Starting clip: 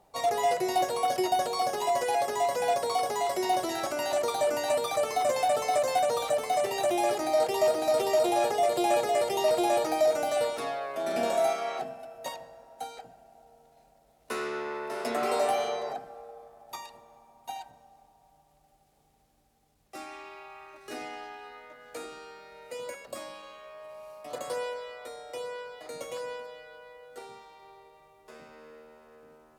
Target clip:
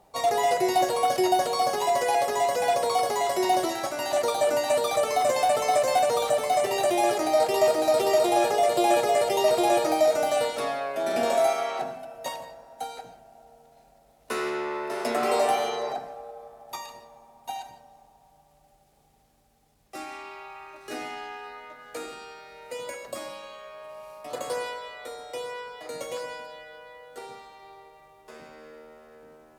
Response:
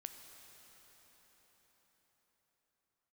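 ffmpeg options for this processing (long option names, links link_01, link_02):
-filter_complex "[0:a]asplit=3[link_01][link_02][link_03];[link_01]afade=type=out:start_time=3.68:duration=0.02[link_04];[link_02]agate=range=-33dB:threshold=-28dB:ratio=3:detection=peak,afade=type=in:start_time=3.68:duration=0.02,afade=type=out:start_time=4.71:duration=0.02[link_05];[link_03]afade=type=in:start_time=4.71:duration=0.02[link_06];[link_04][link_05][link_06]amix=inputs=3:normalize=0[link_07];[1:a]atrim=start_sample=2205,afade=type=out:start_time=0.23:duration=0.01,atrim=end_sample=10584[link_08];[link_07][link_08]afir=irnorm=-1:irlink=0,volume=9dB"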